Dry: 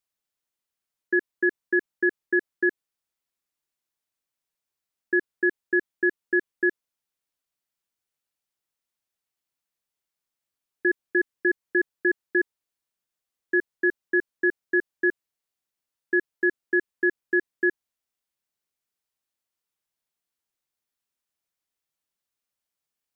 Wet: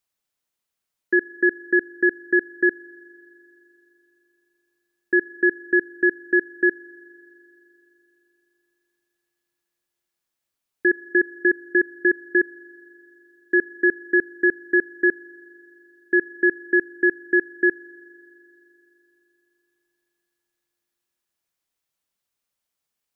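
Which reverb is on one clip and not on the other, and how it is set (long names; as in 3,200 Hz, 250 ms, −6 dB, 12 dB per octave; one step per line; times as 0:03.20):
spring reverb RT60 3.6 s, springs 40 ms, chirp 75 ms, DRR 19 dB
level +4 dB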